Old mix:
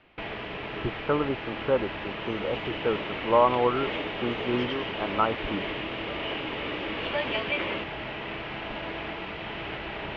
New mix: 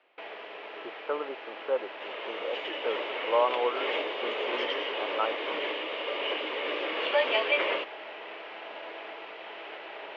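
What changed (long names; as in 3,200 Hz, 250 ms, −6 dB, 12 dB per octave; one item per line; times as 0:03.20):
second sound +9.5 dB
master: add four-pole ladder high-pass 380 Hz, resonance 30%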